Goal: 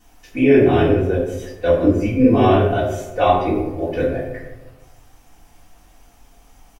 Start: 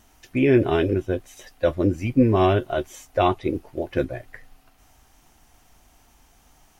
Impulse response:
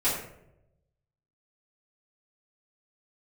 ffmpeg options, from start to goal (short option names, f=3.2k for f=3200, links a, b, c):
-filter_complex "[0:a]asplit=2[a][b];[b]adelay=154,lowpass=f=2k:p=1,volume=-13.5dB,asplit=2[c][d];[d]adelay=154,lowpass=f=2k:p=1,volume=0.47,asplit=2[e][f];[f]adelay=154,lowpass=f=2k:p=1,volume=0.47,asplit=2[g][h];[h]adelay=154,lowpass=f=2k:p=1,volume=0.47,asplit=2[i][j];[j]adelay=154,lowpass=f=2k:p=1,volume=0.47[k];[a][c][e][g][i][k]amix=inputs=6:normalize=0[l];[1:a]atrim=start_sample=2205[m];[l][m]afir=irnorm=-1:irlink=0,volume=-6.5dB"